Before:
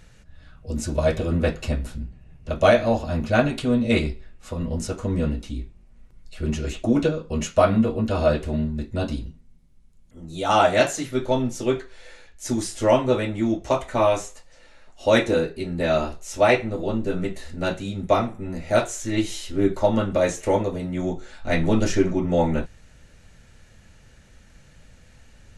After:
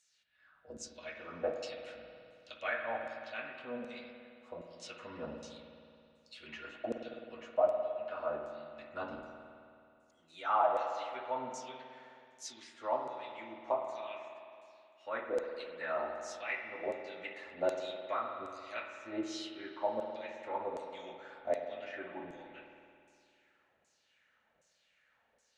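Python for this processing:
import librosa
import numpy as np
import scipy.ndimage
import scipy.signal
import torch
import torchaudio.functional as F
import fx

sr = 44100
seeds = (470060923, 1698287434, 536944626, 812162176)

y = fx.env_lowpass_down(x, sr, base_hz=2400.0, full_db=-17.0)
y = fx.low_shelf(y, sr, hz=170.0, db=-5.0)
y = fx.rider(y, sr, range_db=10, speed_s=0.5)
y = fx.filter_lfo_bandpass(y, sr, shape='saw_down', hz=1.3, low_hz=530.0, high_hz=7600.0, q=2.4)
y = fx.rev_spring(y, sr, rt60_s=2.5, pass_ms=(53,), chirp_ms=50, drr_db=4.0)
y = y * 10.0 ** (-7.0 / 20.0)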